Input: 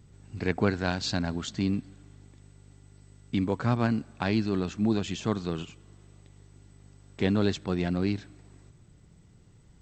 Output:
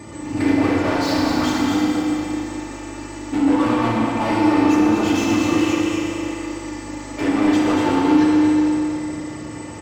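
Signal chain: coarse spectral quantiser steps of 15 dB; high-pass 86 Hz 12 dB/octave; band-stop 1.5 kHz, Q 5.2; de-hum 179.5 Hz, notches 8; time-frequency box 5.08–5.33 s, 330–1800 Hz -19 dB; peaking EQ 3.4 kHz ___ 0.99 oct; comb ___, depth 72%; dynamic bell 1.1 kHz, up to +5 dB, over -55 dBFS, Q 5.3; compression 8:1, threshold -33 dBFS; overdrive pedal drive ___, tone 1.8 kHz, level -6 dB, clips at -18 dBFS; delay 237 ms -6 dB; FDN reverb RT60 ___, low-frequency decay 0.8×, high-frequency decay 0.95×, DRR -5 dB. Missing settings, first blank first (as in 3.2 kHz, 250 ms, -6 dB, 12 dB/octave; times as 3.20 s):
-9.5 dB, 3.4 ms, 38 dB, 2.8 s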